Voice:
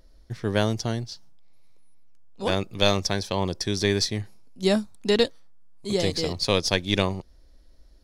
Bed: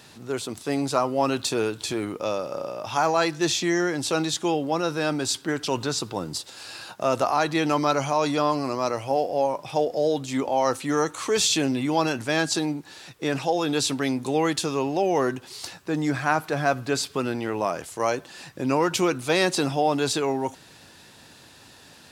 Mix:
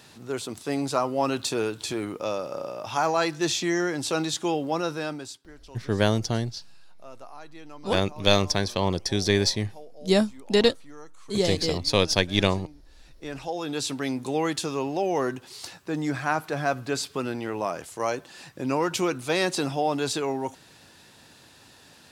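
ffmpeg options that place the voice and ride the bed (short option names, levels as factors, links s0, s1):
-filter_complex "[0:a]adelay=5450,volume=1.12[s0];[1:a]volume=7.5,afade=t=out:st=4.82:d=0.57:silence=0.0944061,afade=t=in:st=12.79:d=1.38:silence=0.105925[s1];[s0][s1]amix=inputs=2:normalize=0"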